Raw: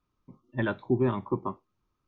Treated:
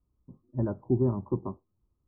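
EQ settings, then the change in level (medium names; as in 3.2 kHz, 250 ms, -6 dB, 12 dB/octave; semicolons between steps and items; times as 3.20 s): Bessel low-pass 660 Hz, order 8; distance through air 290 m; peaking EQ 61 Hz +11 dB 1.2 oct; 0.0 dB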